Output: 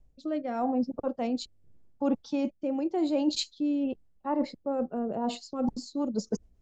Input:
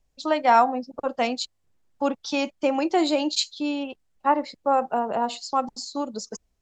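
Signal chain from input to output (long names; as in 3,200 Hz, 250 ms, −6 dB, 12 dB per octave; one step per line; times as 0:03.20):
tilt shelving filter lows +9 dB, about 720 Hz
reversed playback
downward compressor 6 to 1, threshold −29 dBFS, peak gain reduction 14.5 dB
reversed playback
rotating-speaker cabinet horn 0.85 Hz, later 7.5 Hz, at 0:05.16
level +4.5 dB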